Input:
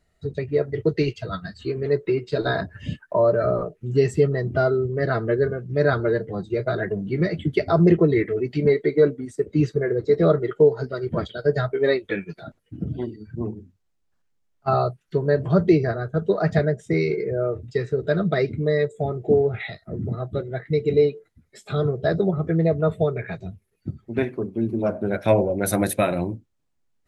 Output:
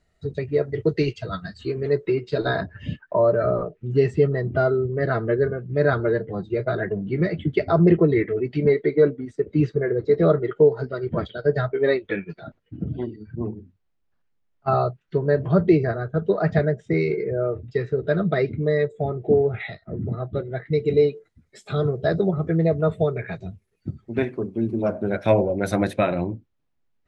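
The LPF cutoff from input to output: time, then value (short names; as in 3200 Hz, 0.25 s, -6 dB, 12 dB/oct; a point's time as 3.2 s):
1.83 s 8800 Hz
2.91 s 3600 Hz
20.35 s 3600 Hz
21.08 s 8600 Hz
25.12 s 8600 Hz
25.9 s 3900 Hz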